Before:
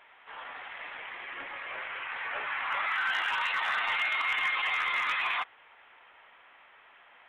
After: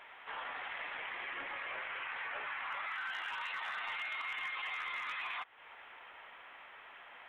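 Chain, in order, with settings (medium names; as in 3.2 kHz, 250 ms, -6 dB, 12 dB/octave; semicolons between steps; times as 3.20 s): compression 6:1, threshold -42 dBFS, peak gain reduction 14.5 dB; trim +3 dB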